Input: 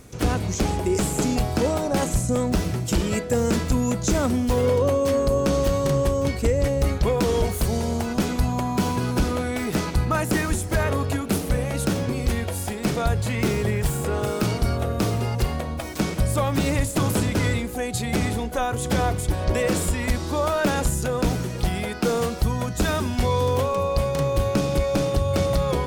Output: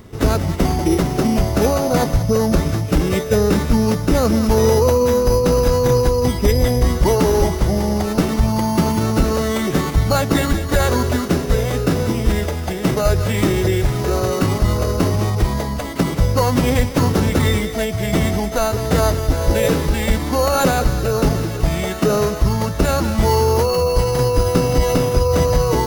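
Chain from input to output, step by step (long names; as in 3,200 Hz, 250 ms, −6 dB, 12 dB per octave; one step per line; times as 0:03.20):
bad sample-rate conversion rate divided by 8×, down filtered, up hold
feedback echo with a high-pass in the loop 191 ms, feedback 78%, high-pass 810 Hz, level −11 dB
phase-vocoder pitch shift with formants kept −2 semitones
level +6.5 dB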